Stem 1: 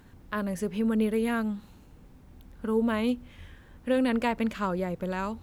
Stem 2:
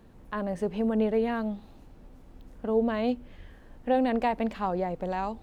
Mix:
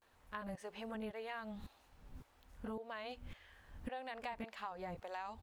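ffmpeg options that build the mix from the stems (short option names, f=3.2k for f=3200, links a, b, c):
-filter_complex "[0:a]lowshelf=f=68:g=10.5,acompressor=threshold=-31dB:ratio=3,aeval=exprs='val(0)*pow(10,-38*if(lt(mod(-1.8*n/s,1),2*abs(-1.8)/1000),1-mod(-1.8*n/s,1)/(2*abs(-1.8)/1000),(mod(-1.8*n/s,1)-2*abs(-1.8)/1000)/(1-2*abs(-1.8)/1000))/20)':c=same,volume=-1.5dB[a];[1:a]highpass=970,volume=-1,adelay=19,volume=-3dB[b];[a][b]amix=inputs=2:normalize=0,equalizer=f=74:w=1.5:g=3.5,acompressor=threshold=-41dB:ratio=6"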